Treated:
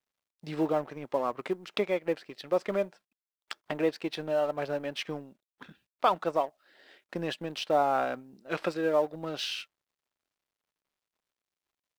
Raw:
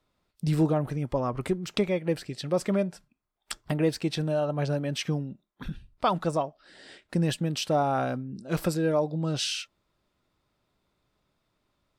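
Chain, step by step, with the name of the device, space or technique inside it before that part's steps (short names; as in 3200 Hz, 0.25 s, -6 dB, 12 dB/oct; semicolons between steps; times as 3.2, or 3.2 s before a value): 8.11–8.81 dynamic EQ 2500 Hz, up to +4 dB, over -50 dBFS, Q 0.83; phone line with mismatched companding (BPF 380–3600 Hz; G.711 law mismatch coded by A); gain +1.5 dB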